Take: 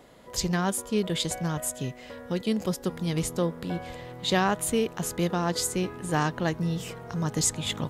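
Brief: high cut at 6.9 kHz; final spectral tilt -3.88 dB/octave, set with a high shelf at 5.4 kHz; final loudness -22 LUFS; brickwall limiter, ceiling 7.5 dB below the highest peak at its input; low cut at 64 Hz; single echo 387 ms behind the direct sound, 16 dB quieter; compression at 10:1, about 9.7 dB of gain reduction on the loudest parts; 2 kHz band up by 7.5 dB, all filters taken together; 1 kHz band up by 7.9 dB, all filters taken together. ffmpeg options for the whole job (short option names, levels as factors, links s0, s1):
-af "highpass=64,lowpass=6900,equalizer=f=1000:t=o:g=8.5,equalizer=f=2000:t=o:g=5.5,highshelf=f=5400:g=8.5,acompressor=threshold=0.0708:ratio=10,alimiter=limit=0.1:level=0:latency=1,aecho=1:1:387:0.158,volume=2.82"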